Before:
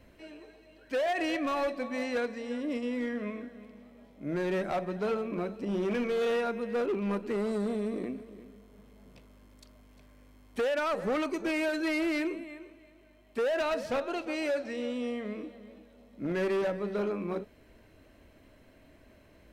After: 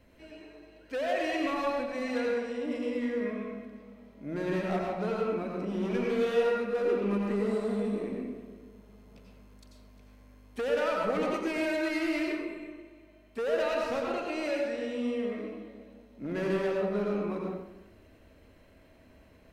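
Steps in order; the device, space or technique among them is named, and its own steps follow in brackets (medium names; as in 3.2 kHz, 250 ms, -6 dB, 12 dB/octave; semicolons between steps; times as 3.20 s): bathroom (reverberation RT60 0.95 s, pre-delay 83 ms, DRR -1.5 dB); trim -3.5 dB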